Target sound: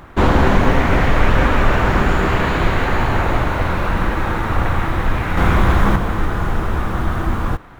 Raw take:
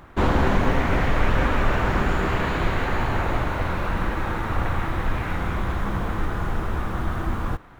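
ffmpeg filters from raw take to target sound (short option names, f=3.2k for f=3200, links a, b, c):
-filter_complex "[0:a]asettb=1/sr,asplit=3[a][b][c];[a]atrim=end=5.374[d];[b]atrim=start=5.37:end=5.96,asetpts=PTS-STARTPTS,afade=t=in:d=0.004:c=qsin,afade=t=out:st=0.586:d=0.004:c=qsin,acontrast=38[e];[c]atrim=start=5.956[f];[d][e]acrossfade=d=0.004:c1=hsin:c2=qsin[g];[g][f]acrossfade=d=0.004:c1=qsin:c2=hsin,volume=6.5dB"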